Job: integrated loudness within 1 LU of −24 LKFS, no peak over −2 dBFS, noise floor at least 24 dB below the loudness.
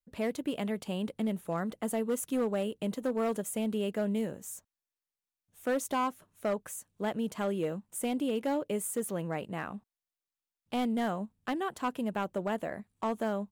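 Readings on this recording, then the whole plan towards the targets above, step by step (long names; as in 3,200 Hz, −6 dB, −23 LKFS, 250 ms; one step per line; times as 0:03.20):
share of clipped samples 1.5%; peaks flattened at −24.5 dBFS; integrated loudness −34.0 LKFS; sample peak −24.5 dBFS; target loudness −24.0 LKFS
→ clipped peaks rebuilt −24.5 dBFS
level +10 dB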